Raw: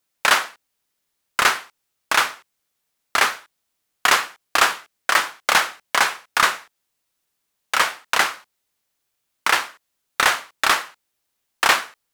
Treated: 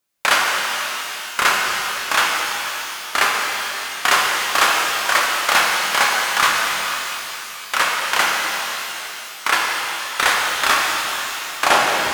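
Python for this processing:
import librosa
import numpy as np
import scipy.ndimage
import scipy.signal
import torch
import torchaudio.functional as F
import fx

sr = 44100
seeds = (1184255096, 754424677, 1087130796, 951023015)

y = fx.tape_stop_end(x, sr, length_s=0.55)
y = fx.rev_shimmer(y, sr, seeds[0], rt60_s=3.5, semitones=12, shimmer_db=-8, drr_db=-2.0)
y = y * 10.0 ** (-1.0 / 20.0)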